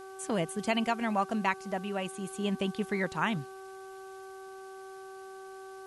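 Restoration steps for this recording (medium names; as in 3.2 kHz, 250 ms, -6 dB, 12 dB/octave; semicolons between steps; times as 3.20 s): de-hum 383.4 Hz, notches 4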